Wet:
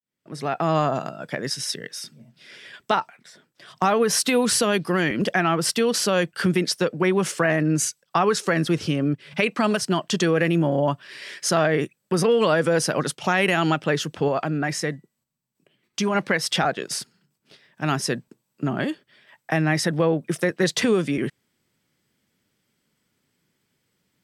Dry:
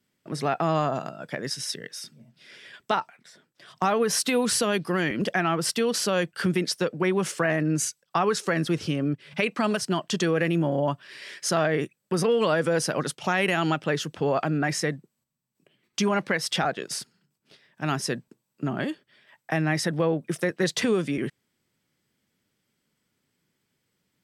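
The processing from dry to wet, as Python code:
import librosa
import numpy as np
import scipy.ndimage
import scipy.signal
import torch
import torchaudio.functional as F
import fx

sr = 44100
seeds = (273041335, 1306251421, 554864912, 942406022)

y = fx.fade_in_head(x, sr, length_s=0.77)
y = fx.comb_fb(y, sr, f0_hz=980.0, decay_s=0.33, harmonics='all', damping=0.0, mix_pct=30, at=(14.28, 16.15))
y = F.gain(torch.from_numpy(y), 3.5).numpy()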